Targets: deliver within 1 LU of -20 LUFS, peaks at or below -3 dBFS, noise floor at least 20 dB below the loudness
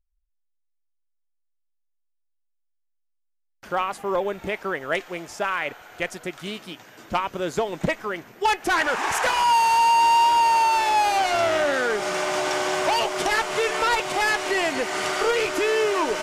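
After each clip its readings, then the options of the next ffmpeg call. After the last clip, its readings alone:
loudness -22.5 LUFS; peak -11.0 dBFS; loudness target -20.0 LUFS
-> -af "volume=2.5dB"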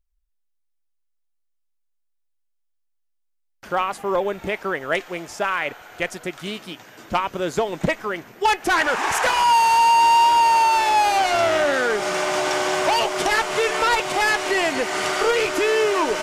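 loudness -20.0 LUFS; peak -8.5 dBFS; noise floor -70 dBFS

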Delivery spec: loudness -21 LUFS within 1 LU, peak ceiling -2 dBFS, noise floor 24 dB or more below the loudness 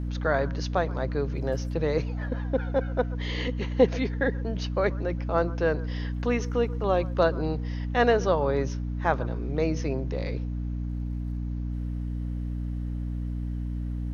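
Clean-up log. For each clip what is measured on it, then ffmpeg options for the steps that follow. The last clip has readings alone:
hum 60 Hz; harmonics up to 300 Hz; hum level -28 dBFS; loudness -28.5 LUFS; peak -7.5 dBFS; loudness target -21.0 LUFS
-> -af "bandreject=f=60:t=h:w=6,bandreject=f=120:t=h:w=6,bandreject=f=180:t=h:w=6,bandreject=f=240:t=h:w=6,bandreject=f=300:t=h:w=6"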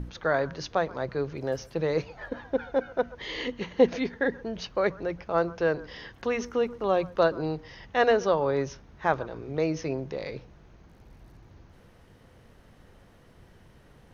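hum none; loudness -28.5 LUFS; peak -8.0 dBFS; loudness target -21.0 LUFS
-> -af "volume=7.5dB,alimiter=limit=-2dB:level=0:latency=1"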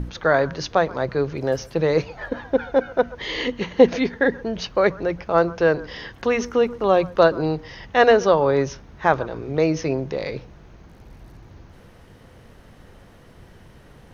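loudness -21.5 LUFS; peak -2.0 dBFS; noise floor -48 dBFS

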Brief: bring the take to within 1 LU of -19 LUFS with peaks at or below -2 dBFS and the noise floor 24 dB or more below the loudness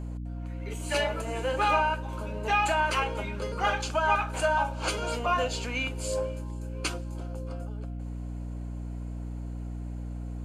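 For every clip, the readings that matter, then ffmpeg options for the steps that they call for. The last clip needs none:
hum 60 Hz; harmonics up to 300 Hz; hum level -33 dBFS; loudness -30.0 LUFS; peak -12.0 dBFS; loudness target -19.0 LUFS
-> -af "bandreject=f=60:t=h:w=6,bandreject=f=120:t=h:w=6,bandreject=f=180:t=h:w=6,bandreject=f=240:t=h:w=6,bandreject=f=300:t=h:w=6"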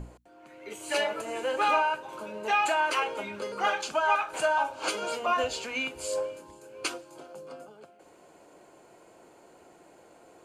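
hum none; loudness -29.0 LUFS; peak -12.5 dBFS; loudness target -19.0 LUFS
-> -af "volume=10dB"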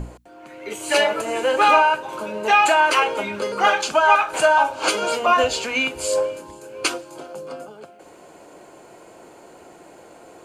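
loudness -19.0 LUFS; peak -2.5 dBFS; noise floor -47 dBFS

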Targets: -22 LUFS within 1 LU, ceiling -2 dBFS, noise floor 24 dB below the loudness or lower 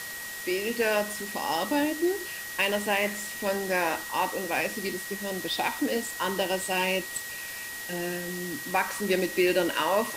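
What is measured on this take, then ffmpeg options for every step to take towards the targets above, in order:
steady tone 1900 Hz; tone level -38 dBFS; noise floor -38 dBFS; noise floor target -53 dBFS; loudness -28.5 LUFS; peak -12.0 dBFS; loudness target -22.0 LUFS
-> -af "bandreject=f=1.9k:w=30"
-af "afftdn=nr=15:nf=-38"
-af "volume=6.5dB"

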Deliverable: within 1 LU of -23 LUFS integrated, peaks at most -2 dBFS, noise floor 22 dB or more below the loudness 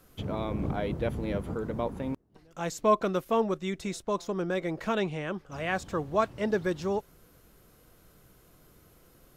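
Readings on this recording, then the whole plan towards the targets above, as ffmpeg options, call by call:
loudness -31.0 LUFS; peak -12.0 dBFS; loudness target -23.0 LUFS
-> -af "volume=8dB"

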